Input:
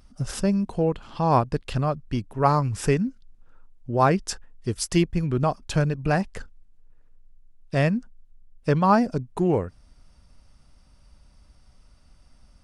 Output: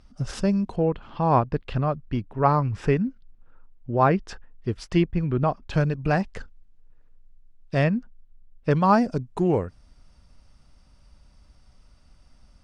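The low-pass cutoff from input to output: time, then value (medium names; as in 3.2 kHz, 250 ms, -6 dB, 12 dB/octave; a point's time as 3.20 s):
6.1 kHz
from 0.76 s 2.9 kHz
from 5.73 s 5.7 kHz
from 7.84 s 3.5 kHz
from 8.71 s 8.7 kHz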